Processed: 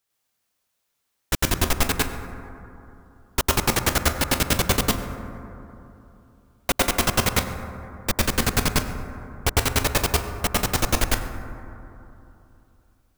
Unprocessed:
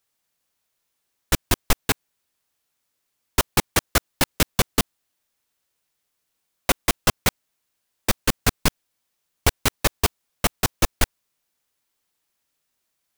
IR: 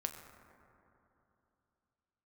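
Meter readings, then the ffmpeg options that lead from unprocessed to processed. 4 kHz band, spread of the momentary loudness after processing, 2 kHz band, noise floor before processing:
+0.5 dB, 17 LU, +1.0 dB, -77 dBFS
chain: -filter_complex "[0:a]asplit=2[a][b];[1:a]atrim=start_sample=2205,adelay=103[c];[b][c]afir=irnorm=-1:irlink=0,volume=3dB[d];[a][d]amix=inputs=2:normalize=0,volume=-3.5dB"

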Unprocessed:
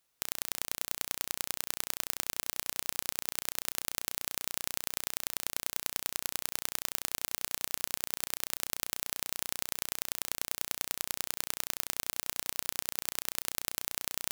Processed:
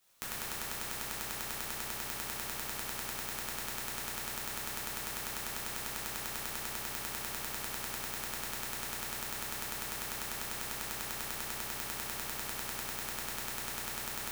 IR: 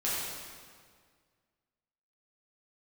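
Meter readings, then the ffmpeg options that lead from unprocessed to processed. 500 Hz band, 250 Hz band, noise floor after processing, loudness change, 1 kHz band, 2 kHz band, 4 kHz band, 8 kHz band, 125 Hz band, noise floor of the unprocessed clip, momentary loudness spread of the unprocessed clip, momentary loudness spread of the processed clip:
+1.5 dB, +3.0 dB, -41 dBFS, -2.5 dB, +3.0 dB, +1.5 dB, -3.0 dB, -3.5 dB, +4.5 dB, -77 dBFS, 1 LU, 0 LU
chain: -filter_complex "[0:a]aeval=exprs='0.75*(cos(1*acos(clip(val(0)/0.75,-1,1)))-cos(1*PI/2))+0.0299*(cos(3*acos(clip(val(0)/0.75,-1,1)))-cos(3*PI/2))+0.188*(cos(4*acos(clip(val(0)/0.75,-1,1)))-cos(4*PI/2))+0.0119*(cos(8*acos(clip(val(0)/0.75,-1,1)))-cos(8*PI/2))':c=same,acrossover=split=590|2500[a][b][c];[a]acompressor=threshold=-53dB:ratio=4[d];[b]acompressor=threshold=-51dB:ratio=4[e];[c]acompressor=threshold=-45dB:ratio=4[f];[d][e][f]amix=inputs=3:normalize=0[g];[1:a]atrim=start_sample=2205[h];[g][h]afir=irnorm=-1:irlink=0,volume=4.5dB"

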